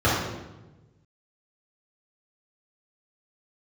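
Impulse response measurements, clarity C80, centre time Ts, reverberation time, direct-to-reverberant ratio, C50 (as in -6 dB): 3.5 dB, 70 ms, 1.1 s, -10.0 dB, 0.0 dB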